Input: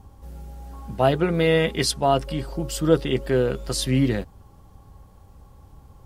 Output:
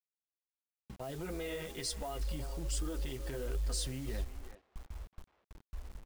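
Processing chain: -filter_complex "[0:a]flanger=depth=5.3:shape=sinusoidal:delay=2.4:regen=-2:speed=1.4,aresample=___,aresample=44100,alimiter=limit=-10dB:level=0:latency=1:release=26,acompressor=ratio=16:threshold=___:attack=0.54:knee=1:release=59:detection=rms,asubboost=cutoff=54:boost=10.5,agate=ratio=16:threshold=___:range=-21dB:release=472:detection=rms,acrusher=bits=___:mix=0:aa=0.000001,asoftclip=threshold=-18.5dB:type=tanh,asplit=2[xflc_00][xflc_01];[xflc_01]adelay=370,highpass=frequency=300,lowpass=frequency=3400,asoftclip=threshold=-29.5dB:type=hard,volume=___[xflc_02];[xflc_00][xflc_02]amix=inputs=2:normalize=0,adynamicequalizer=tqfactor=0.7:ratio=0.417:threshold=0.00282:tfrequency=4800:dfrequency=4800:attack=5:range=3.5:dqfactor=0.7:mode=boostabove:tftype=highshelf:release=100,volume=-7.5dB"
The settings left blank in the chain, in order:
22050, -26dB, -32dB, 7, -13dB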